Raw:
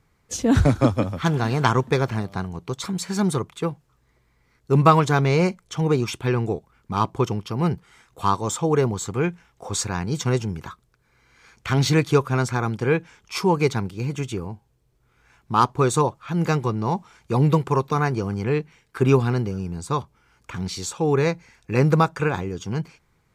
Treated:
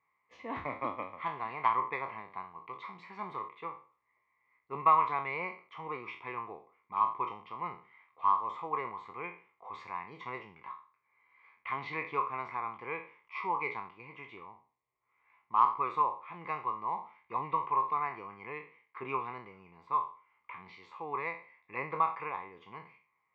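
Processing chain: spectral sustain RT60 0.39 s; two resonant band-passes 1.5 kHz, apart 0.95 oct; distance through air 350 m

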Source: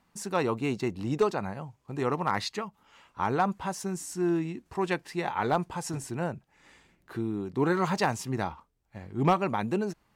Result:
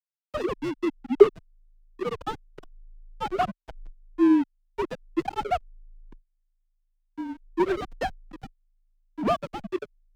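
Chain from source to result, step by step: formants replaced by sine waves; hysteresis with a dead band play -22 dBFS; frequency shift -27 Hz; trim +5 dB

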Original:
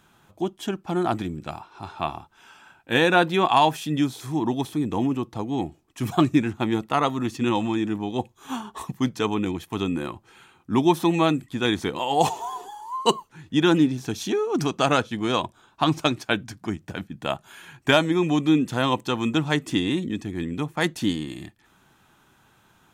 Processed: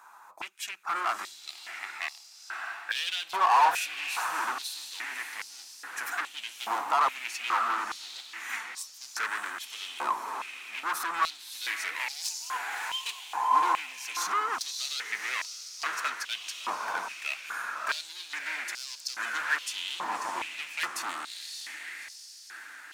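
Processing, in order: peaking EQ 3.2 kHz -15 dB 0.47 oct; peak limiter -15 dBFS, peak gain reduction 9 dB; hard clipper -29 dBFS, distortion -6 dB; echo that smears into a reverb 608 ms, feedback 56%, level -5.5 dB; step-sequenced high-pass 2.4 Hz 980–5000 Hz; trim +3 dB

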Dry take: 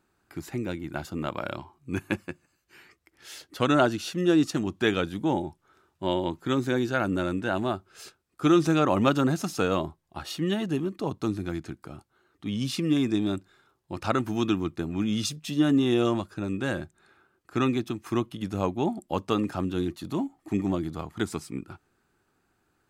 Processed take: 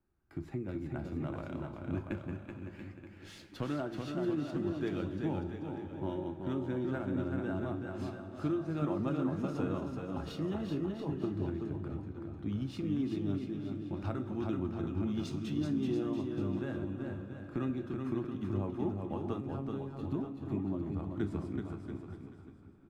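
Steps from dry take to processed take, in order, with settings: in parallel at -9 dB: sample-rate reducer 9.3 kHz, jitter 0%; on the sum: two-slope reverb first 0.25 s, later 3.3 s, from -19 dB, DRR 6.5 dB; compression 3:1, threshold -39 dBFS, peak gain reduction 21 dB; RIAA curve playback; 19.40–19.99 s: robot voice 136 Hz; bass shelf 130 Hz -7 dB; on a send: bouncing-ball echo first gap 380 ms, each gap 0.8×, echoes 5; on the sum: three bands expanded up and down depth 40%; trim -4 dB

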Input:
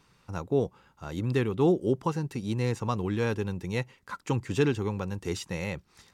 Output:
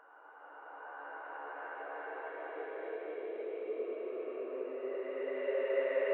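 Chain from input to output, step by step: mistuned SSB +140 Hz 270–2200 Hz; Paulstretch 15×, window 0.25 s, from 0.95 s; trim -2.5 dB

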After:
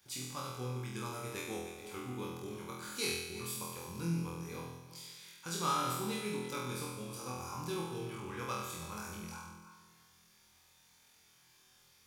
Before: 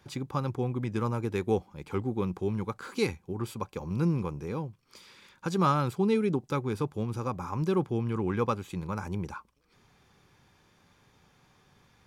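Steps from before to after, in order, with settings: backward echo that repeats 170 ms, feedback 44%, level -11 dB; pre-emphasis filter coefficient 0.9; flutter echo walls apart 4.1 m, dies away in 0.98 s; trim +2.5 dB

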